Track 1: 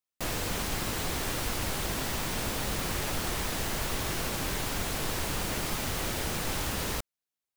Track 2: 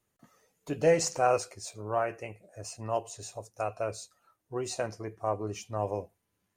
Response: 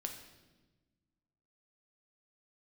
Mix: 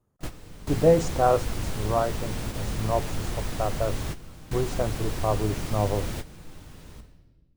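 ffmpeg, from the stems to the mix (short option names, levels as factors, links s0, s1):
-filter_complex "[0:a]equalizer=f=13000:t=o:w=0.2:g=-7,volume=0.473,asplit=2[s0][s1];[s1]volume=0.224[s2];[1:a]highshelf=f=1600:t=q:w=1.5:g=-8.5,volume=1.12,asplit=2[s3][s4];[s4]apad=whole_len=333598[s5];[s0][s5]sidechaingate=range=0.0224:threshold=0.00158:ratio=16:detection=peak[s6];[2:a]atrim=start_sample=2205[s7];[s2][s7]afir=irnorm=-1:irlink=0[s8];[s6][s3][s8]amix=inputs=3:normalize=0,lowshelf=f=310:g=11"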